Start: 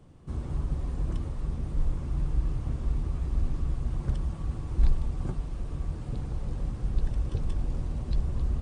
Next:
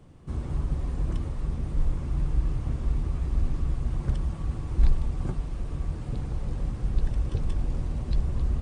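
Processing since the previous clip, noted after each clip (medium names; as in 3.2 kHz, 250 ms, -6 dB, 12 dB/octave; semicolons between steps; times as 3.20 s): peaking EQ 2.1 kHz +2 dB; trim +2 dB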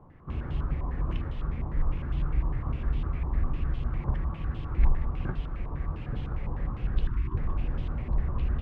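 time-frequency box 7.06–7.37 s, 420–890 Hz -29 dB; step-sequenced low-pass 9.9 Hz 990–3100 Hz; trim -2 dB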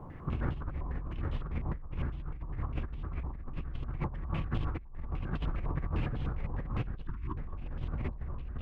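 hard clipper -13.5 dBFS, distortion -30 dB; compressor with a negative ratio -36 dBFS, ratio -1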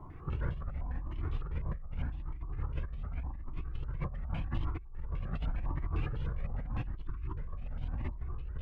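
Shepard-style flanger rising 0.86 Hz; trim +1 dB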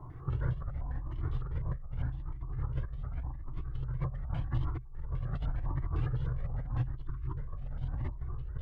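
graphic EQ with 31 bands 125 Hz +11 dB, 200 Hz -11 dB, 2.5 kHz -12 dB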